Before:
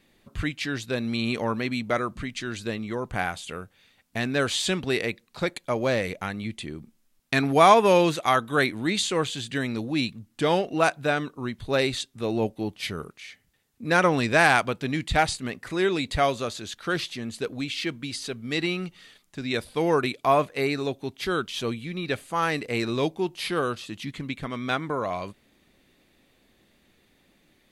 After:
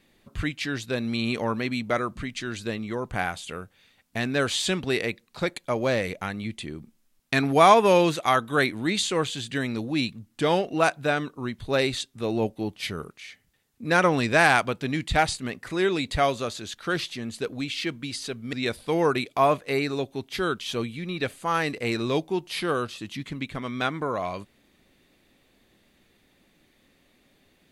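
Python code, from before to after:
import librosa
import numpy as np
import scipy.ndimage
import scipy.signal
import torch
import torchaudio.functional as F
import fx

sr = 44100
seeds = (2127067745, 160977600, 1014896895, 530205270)

y = fx.edit(x, sr, fx.cut(start_s=18.53, length_s=0.88), tone=tone)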